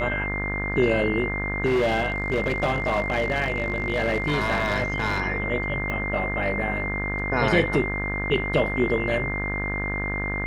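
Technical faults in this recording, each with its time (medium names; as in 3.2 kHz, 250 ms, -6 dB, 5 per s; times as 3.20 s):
buzz 50 Hz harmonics 39 -30 dBFS
whine 2.1 kHz -28 dBFS
1.65–5.22 s: clipped -18 dBFS
5.90 s: pop -17 dBFS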